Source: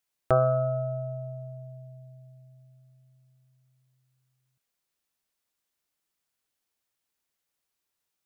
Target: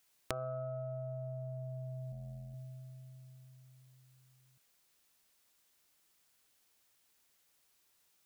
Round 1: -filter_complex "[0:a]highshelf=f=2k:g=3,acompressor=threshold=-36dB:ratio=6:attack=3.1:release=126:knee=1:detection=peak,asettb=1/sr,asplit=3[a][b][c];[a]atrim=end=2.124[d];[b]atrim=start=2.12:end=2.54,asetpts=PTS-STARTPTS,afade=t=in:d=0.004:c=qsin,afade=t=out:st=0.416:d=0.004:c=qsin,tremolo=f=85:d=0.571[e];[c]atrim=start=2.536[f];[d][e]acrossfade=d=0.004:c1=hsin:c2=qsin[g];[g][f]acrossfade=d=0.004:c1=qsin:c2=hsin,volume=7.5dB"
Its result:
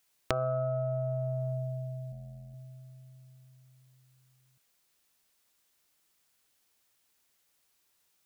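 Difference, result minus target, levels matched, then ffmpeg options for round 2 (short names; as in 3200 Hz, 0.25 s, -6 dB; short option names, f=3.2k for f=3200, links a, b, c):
compressor: peak gain reduction -9 dB
-filter_complex "[0:a]highshelf=f=2k:g=3,acompressor=threshold=-47dB:ratio=6:attack=3.1:release=126:knee=1:detection=peak,asettb=1/sr,asplit=3[a][b][c];[a]atrim=end=2.124[d];[b]atrim=start=2.12:end=2.54,asetpts=PTS-STARTPTS,afade=t=in:d=0.004:c=qsin,afade=t=out:st=0.416:d=0.004:c=qsin,tremolo=f=85:d=0.571[e];[c]atrim=start=2.536[f];[d][e]acrossfade=d=0.004:c1=hsin:c2=qsin[g];[g][f]acrossfade=d=0.004:c1=qsin:c2=hsin,volume=7.5dB"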